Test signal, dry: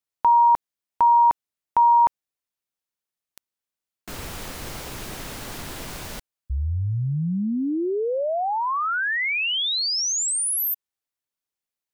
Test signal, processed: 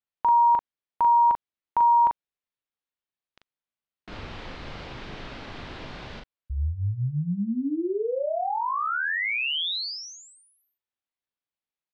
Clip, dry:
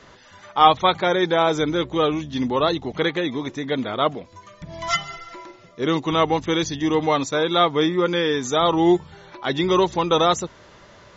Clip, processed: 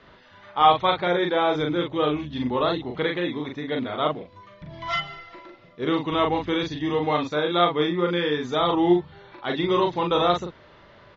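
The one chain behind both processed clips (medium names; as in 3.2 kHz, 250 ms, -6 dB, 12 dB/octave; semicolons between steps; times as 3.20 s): low-pass 4.1 kHz 24 dB/octave; doubling 40 ms -3.5 dB; trim -4.5 dB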